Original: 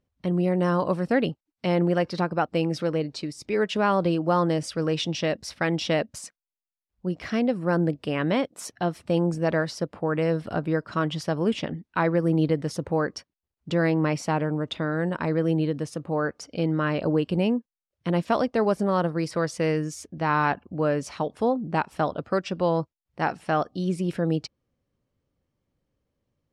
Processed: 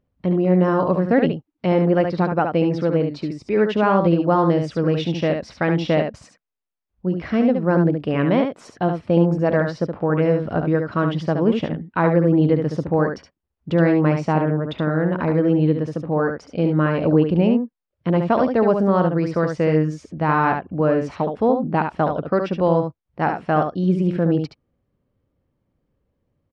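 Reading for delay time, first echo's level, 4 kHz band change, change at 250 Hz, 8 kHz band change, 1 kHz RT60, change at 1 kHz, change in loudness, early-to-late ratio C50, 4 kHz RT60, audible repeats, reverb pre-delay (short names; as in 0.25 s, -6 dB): 71 ms, -6.0 dB, -2.0 dB, +6.5 dB, under -10 dB, none, +5.0 dB, +6.0 dB, none, none, 1, none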